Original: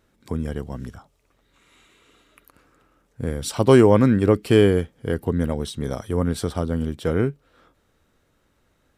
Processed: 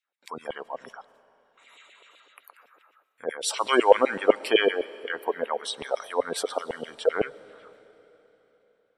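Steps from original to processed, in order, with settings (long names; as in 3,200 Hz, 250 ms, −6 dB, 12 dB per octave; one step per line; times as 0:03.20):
parametric band 1,500 Hz −2 dB 0.45 octaves
noise gate with hold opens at −51 dBFS
auto-filter high-pass saw down 7.9 Hz 500–3,000 Hz
gate on every frequency bin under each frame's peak −20 dB strong
on a send: convolution reverb RT60 3.9 s, pre-delay 65 ms, DRR 19.5 dB
on the sum: level +1.5 dB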